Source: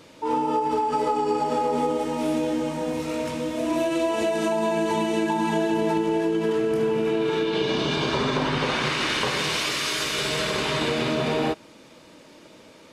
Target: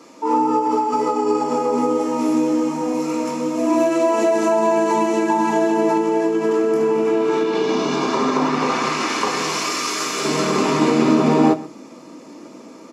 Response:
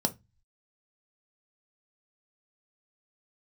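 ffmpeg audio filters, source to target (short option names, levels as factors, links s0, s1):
-filter_complex "[0:a]asetnsamples=n=441:p=0,asendcmd='10.24 highpass f 200',highpass=f=660:p=1,asplit=2[s0][s1];[s1]adelay=128.3,volume=0.112,highshelf=f=4000:g=-2.89[s2];[s0][s2]amix=inputs=2:normalize=0[s3];[1:a]atrim=start_sample=2205,asetrate=57330,aresample=44100[s4];[s3][s4]afir=irnorm=-1:irlink=0"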